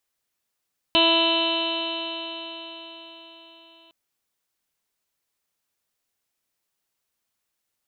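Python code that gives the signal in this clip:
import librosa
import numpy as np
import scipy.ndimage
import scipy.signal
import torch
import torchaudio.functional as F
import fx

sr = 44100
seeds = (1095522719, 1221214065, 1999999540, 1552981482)

y = fx.additive_stiff(sr, length_s=2.96, hz=330.0, level_db=-23.0, upper_db=(0.5, -0.5, -12, -15.5, -19.5, -12.5, -1.0, 5, -9.0, -2.5, -5.5), decay_s=4.75, stiffness=0.00044)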